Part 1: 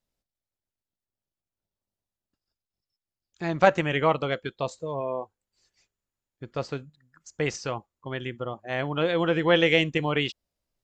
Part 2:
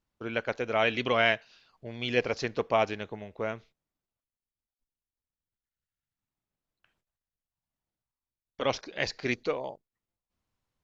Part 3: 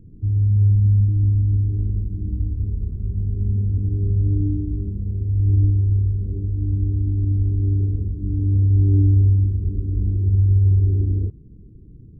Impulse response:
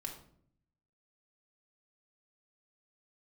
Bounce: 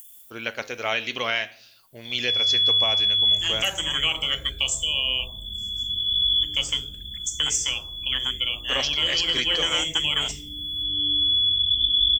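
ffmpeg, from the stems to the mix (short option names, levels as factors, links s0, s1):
-filter_complex "[0:a]aexciter=amount=10.6:drive=8.3:freq=6400,volume=0.668,asplit=3[s0][s1][s2];[s1]volume=0.335[s3];[1:a]flanger=delay=8:depth=3.9:regen=-83:speed=0.53:shape=sinusoidal,adelay=100,volume=0.944,asplit=2[s4][s5];[s5]volume=0.237[s6];[2:a]adelay=2050,volume=0.562,asplit=2[s7][s8];[s8]volume=0.237[s9];[s2]apad=whole_len=628025[s10];[s7][s10]sidechaincompress=threshold=0.00112:ratio=6:attack=16:release=779[s11];[s0][s11]amix=inputs=2:normalize=0,lowpass=f=3000:t=q:w=0.5098,lowpass=f=3000:t=q:w=0.6013,lowpass=f=3000:t=q:w=0.9,lowpass=f=3000:t=q:w=2.563,afreqshift=-3500,acompressor=threshold=0.0251:ratio=3,volume=1[s12];[3:a]atrim=start_sample=2205[s13];[s3][s6][s9]amix=inputs=3:normalize=0[s14];[s14][s13]afir=irnorm=-1:irlink=0[s15];[s4][s12][s15]amix=inputs=3:normalize=0,acompressor=mode=upward:threshold=0.00141:ratio=2.5,crystalizer=i=8:c=0,alimiter=limit=0.266:level=0:latency=1:release=447"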